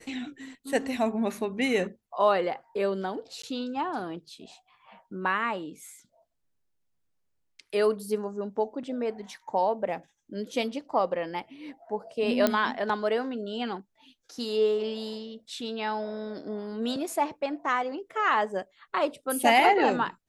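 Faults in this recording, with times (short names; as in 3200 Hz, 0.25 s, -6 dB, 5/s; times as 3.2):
3.42–3.43 gap 14 ms
12.47 pop -9 dBFS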